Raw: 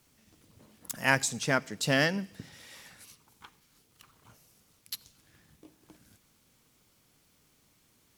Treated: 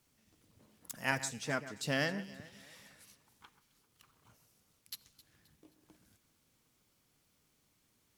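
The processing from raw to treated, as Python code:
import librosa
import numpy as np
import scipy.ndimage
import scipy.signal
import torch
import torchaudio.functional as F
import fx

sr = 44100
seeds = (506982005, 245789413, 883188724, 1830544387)

y = fx.notch_comb(x, sr, f0_hz=180.0, at=(1.11, 1.87))
y = fx.echo_alternate(y, sr, ms=132, hz=2400.0, feedback_pct=62, wet_db=-13.5)
y = y * librosa.db_to_amplitude(-7.5)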